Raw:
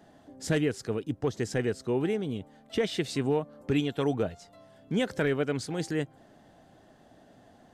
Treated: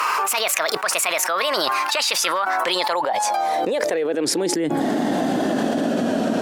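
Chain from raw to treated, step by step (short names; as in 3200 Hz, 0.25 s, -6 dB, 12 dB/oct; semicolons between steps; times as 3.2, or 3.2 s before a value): speed glide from 152% -> 89%; high-pass sweep 1300 Hz -> 250 Hz, 2.38–4.76; fast leveller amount 100%; gain -2 dB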